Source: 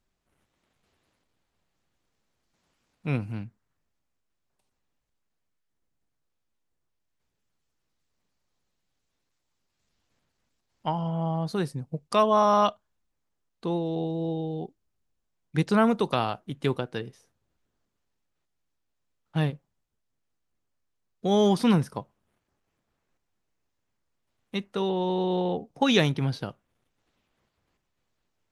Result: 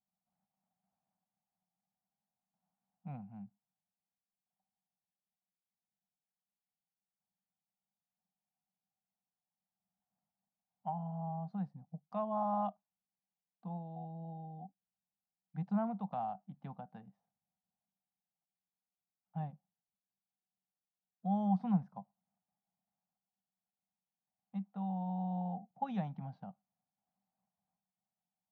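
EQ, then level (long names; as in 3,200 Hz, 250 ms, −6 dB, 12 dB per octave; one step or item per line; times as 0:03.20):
pair of resonant band-passes 380 Hz, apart 2 octaves
high-frequency loss of the air 67 metres
−4.5 dB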